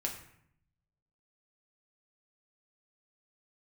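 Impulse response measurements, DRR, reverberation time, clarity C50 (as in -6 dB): -0.5 dB, 0.70 s, 8.0 dB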